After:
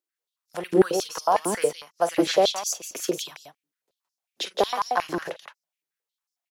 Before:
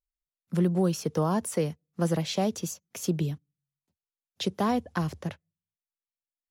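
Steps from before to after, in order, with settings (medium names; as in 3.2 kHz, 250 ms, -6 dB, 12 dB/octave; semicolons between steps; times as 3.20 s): multi-tap echo 41/47/169 ms -17.5/-18/-5 dB; step-sequenced high-pass 11 Hz 320–5300 Hz; trim +3.5 dB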